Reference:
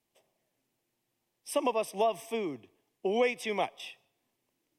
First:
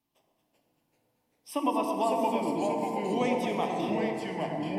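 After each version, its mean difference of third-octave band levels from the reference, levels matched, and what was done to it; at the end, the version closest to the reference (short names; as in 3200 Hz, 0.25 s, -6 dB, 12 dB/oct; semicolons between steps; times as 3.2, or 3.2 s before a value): 10.0 dB: graphic EQ 250/500/1000/2000/8000 Hz +5/-9/+5/-6/-7 dB; echoes that change speed 0.366 s, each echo -2 st, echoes 3; on a send: echo with dull and thin repeats by turns 0.114 s, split 930 Hz, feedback 53%, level -4 dB; on the sum: FDN reverb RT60 3.1 s, high-frequency decay 0.4×, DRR 3.5 dB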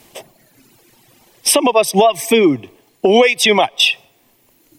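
4.0 dB: reverb removal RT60 1.6 s; dynamic EQ 3700 Hz, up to +6 dB, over -52 dBFS, Q 1.4; compressor 12:1, threshold -41 dBFS, peak gain reduction 19 dB; maximiser +35 dB; gain -1 dB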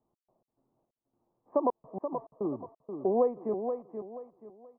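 13.5 dB: steep low-pass 1200 Hz 48 dB/oct; in parallel at -1 dB: compressor, threshold -36 dBFS, peak gain reduction 12.5 dB; on the sum: step gate "x.x.xx..xxxx." 106 bpm -60 dB; feedback echo 0.48 s, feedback 30%, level -7.5 dB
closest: second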